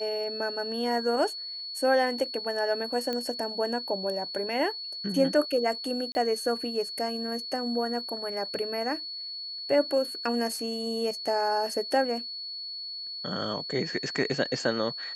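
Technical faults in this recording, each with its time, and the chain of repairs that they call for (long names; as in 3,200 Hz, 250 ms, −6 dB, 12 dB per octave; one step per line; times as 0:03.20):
whistle 4,400 Hz −35 dBFS
0:03.13: click −18 dBFS
0:06.12–0:06.15: drop-out 30 ms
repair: click removal
notch filter 4,400 Hz, Q 30
repair the gap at 0:06.12, 30 ms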